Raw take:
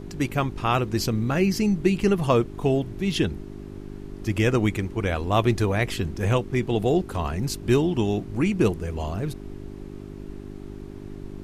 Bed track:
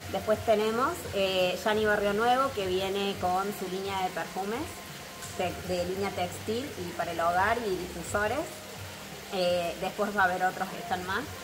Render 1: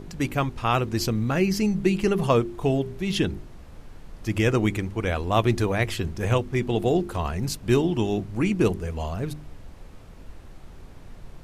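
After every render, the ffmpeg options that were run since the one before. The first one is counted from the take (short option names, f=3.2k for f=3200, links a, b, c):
-af "bandreject=f=50:t=h:w=4,bandreject=f=100:t=h:w=4,bandreject=f=150:t=h:w=4,bandreject=f=200:t=h:w=4,bandreject=f=250:t=h:w=4,bandreject=f=300:t=h:w=4,bandreject=f=350:t=h:w=4,bandreject=f=400:t=h:w=4"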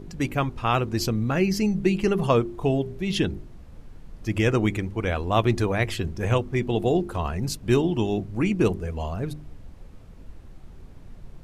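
-af "afftdn=nr=6:nf=-45"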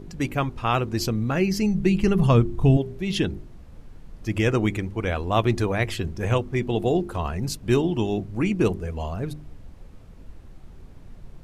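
-filter_complex "[0:a]asettb=1/sr,asplit=3[a][b][c];[a]atrim=end=1.514[d];[b]atrim=start=1.51:end=2.77,asetpts=PTS-STARTPTS,afade=t=in:d=0.004:c=qsin,afade=t=out:st=1.256:d=0.004:c=qsin,asubboost=boost=9.5:cutoff=240[e];[c]atrim=start=2.766[f];[d][e]acrossfade=d=0.004:c1=hsin:c2=qsin[g];[g][f]acrossfade=d=0.004:c1=qsin:c2=hsin"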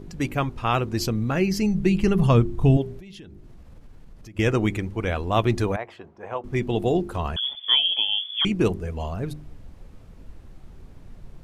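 -filter_complex "[0:a]asettb=1/sr,asplit=3[a][b][c];[a]atrim=end=2.994[d];[b]atrim=start=2.99:end=4.39,asetpts=PTS-STARTPTS,afade=t=in:d=0.004:c=qsin,afade=t=out:st=1.396:d=0.004:c=qsin,acompressor=threshold=-40dB:ratio=8:attack=3.2:release=140:knee=1:detection=peak[e];[c]atrim=start=4.386[f];[d][e]acrossfade=d=0.004:c1=hsin:c2=qsin[g];[g][f]acrossfade=d=0.004:c1=qsin:c2=hsin,asettb=1/sr,asplit=3[h][i][j];[h]atrim=end=5.764[k];[i]atrim=start=5.76:end=6.44,asetpts=PTS-STARTPTS,afade=t=in:d=0.004:c=qsin,afade=t=out:st=0.676:d=0.004:c=qsin,bandpass=f=840:t=q:w=1.9[l];[j]atrim=start=6.436[m];[k][l]acrossfade=d=0.004:c1=hsin:c2=qsin[n];[n][m]acrossfade=d=0.004:c1=qsin:c2=hsin,asettb=1/sr,asplit=3[o][p][q];[o]atrim=end=7.364[r];[p]atrim=start=7.36:end=8.45,asetpts=PTS-STARTPTS,afade=t=in:d=0.004:c=qsin,afade=t=out:st=1.086:d=0.004:c=qsin,lowpass=f=3k:t=q:w=0.5098,lowpass=f=3k:t=q:w=0.6013,lowpass=f=3k:t=q:w=0.9,lowpass=f=3k:t=q:w=2.563,afreqshift=-3500[s];[q]atrim=start=8.446[t];[r][s]acrossfade=d=0.004:c1=hsin:c2=qsin[u];[u][t]acrossfade=d=0.004:c1=qsin:c2=hsin"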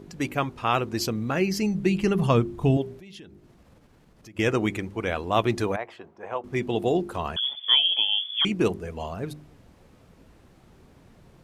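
-af "highpass=f=210:p=1"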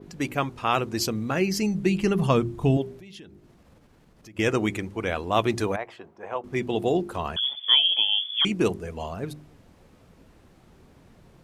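-af "bandreject=f=60:t=h:w=6,bandreject=f=120:t=h:w=6,adynamicequalizer=threshold=0.01:dfrequency=8400:dqfactor=0.71:tfrequency=8400:tqfactor=0.71:attack=5:release=100:ratio=0.375:range=2:mode=boostabove:tftype=bell"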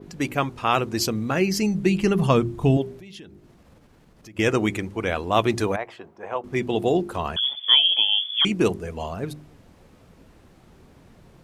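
-af "volume=2.5dB"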